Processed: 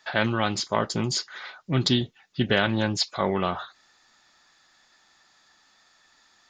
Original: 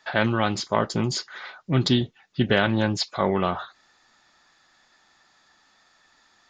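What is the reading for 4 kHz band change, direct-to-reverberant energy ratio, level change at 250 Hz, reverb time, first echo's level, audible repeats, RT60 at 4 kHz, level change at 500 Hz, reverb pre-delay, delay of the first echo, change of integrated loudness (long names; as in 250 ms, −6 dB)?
+1.0 dB, no reverb audible, −2.5 dB, no reverb audible, no echo audible, no echo audible, no reverb audible, −2.5 dB, no reverb audible, no echo audible, −1.5 dB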